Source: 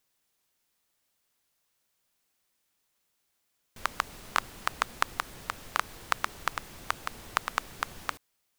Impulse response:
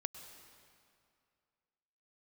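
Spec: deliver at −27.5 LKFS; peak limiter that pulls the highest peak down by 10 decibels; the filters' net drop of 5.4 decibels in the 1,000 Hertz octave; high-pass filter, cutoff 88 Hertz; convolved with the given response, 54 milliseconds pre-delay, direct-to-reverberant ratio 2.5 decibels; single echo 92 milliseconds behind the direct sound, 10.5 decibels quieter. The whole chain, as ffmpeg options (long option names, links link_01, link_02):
-filter_complex "[0:a]highpass=88,equalizer=frequency=1000:width_type=o:gain=-7,alimiter=limit=-13.5dB:level=0:latency=1,aecho=1:1:92:0.299,asplit=2[link_01][link_02];[1:a]atrim=start_sample=2205,adelay=54[link_03];[link_02][link_03]afir=irnorm=-1:irlink=0,volume=-1dB[link_04];[link_01][link_04]amix=inputs=2:normalize=0,volume=13dB"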